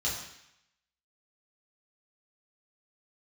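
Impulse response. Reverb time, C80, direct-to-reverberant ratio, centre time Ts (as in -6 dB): 0.75 s, 6.5 dB, -7.0 dB, 48 ms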